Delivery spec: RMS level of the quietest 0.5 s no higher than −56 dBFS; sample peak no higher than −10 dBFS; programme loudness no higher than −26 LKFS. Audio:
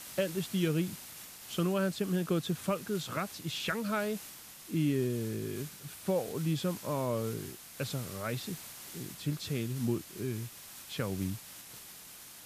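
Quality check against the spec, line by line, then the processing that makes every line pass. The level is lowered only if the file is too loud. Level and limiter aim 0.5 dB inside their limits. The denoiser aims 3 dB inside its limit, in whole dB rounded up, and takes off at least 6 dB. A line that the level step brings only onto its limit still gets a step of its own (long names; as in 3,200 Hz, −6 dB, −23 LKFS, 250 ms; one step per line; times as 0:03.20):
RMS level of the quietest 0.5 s −50 dBFS: out of spec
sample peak −17.5 dBFS: in spec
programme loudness −35.0 LKFS: in spec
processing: broadband denoise 9 dB, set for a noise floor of −50 dBFS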